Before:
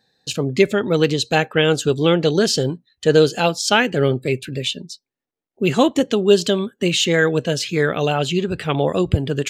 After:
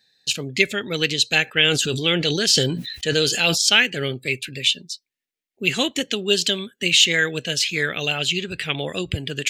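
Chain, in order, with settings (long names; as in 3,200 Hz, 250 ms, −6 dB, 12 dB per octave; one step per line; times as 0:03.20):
high shelf with overshoot 1,500 Hz +11.5 dB, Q 1.5
0:01.44–0:03.58: level that may fall only so fast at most 45 dB per second
level −8.5 dB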